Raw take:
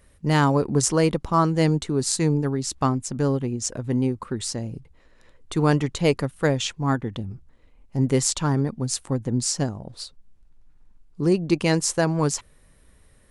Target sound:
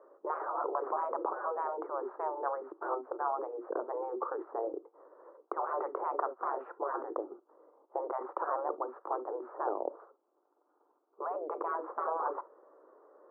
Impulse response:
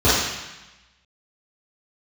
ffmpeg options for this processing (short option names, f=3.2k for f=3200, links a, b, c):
-filter_complex "[0:a]asplit=2[a][b];[1:a]atrim=start_sample=2205,atrim=end_sample=4410,asetrate=57330,aresample=44100[c];[b][c]afir=irnorm=-1:irlink=0,volume=-37dB[d];[a][d]amix=inputs=2:normalize=0,afftfilt=real='re*lt(hypot(re,im),0.112)':imag='im*lt(hypot(re,im),0.112)':win_size=1024:overlap=0.75,asuperpass=centerf=660:order=12:qfactor=0.69,volume=8dB"